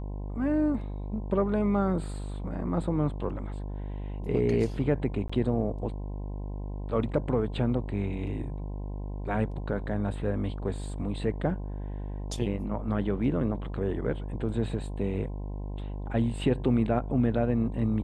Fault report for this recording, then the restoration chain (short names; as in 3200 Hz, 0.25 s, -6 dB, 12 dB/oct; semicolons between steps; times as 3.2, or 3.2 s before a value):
buzz 50 Hz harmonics 21 -35 dBFS
5.28–5.29 gap 15 ms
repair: de-hum 50 Hz, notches 21; interpolate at 5.28, 15 ms